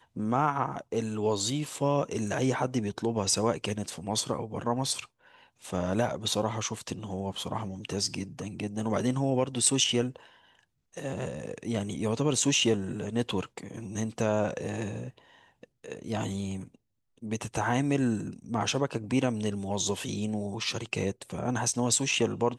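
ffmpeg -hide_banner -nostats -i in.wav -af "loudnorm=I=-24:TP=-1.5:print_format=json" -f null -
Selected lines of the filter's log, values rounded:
"input_i" : "-29.8",
"input_tp" : "-9.8",
"input_lra" : "4.5",
"input_thresh" : "-40.2",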